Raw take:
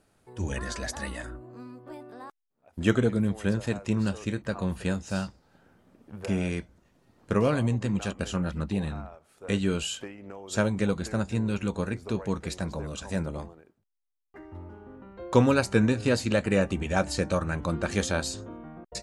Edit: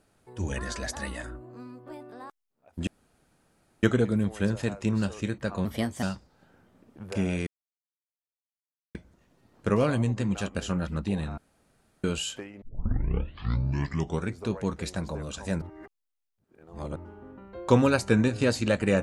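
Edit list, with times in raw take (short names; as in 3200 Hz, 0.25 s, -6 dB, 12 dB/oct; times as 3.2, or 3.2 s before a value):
2.87 insert room tone 0.96 s
4.69–5.15 speed 122%
6.59 insert silence 1.48 s
9.02–9.68 room tone
10.26 tape start 1.73 s
13.26–14.6 reverse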